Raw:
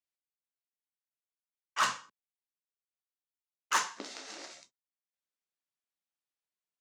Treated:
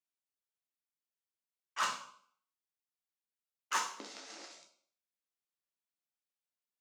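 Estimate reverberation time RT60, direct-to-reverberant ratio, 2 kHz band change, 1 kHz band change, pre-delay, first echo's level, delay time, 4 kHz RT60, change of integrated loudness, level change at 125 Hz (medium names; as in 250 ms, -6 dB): 0.60 s, 5.5 dB, -5.0 dB, -4.0 dB, 6 ms, no echo, no echo, 0.55 s, -5.0 dB, no reading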